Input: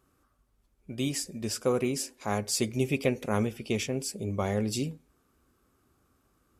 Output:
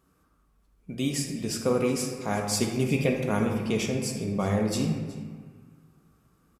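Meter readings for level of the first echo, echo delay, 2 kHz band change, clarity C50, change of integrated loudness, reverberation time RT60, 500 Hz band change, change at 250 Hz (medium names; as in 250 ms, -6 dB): -19.0 dB, 370 ms, +2.5 dB, 3.5 dB, +3.0 dB, 1.7 s, +2.5 dB, +4.0 dB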